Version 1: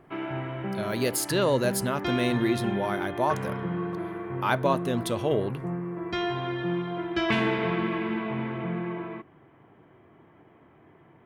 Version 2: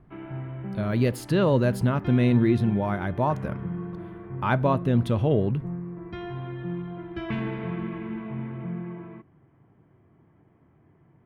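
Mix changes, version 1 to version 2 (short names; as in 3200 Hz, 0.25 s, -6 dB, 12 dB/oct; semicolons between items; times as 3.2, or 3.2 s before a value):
background -9.5 dB; master: add tone controls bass +12 dB, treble -14 dB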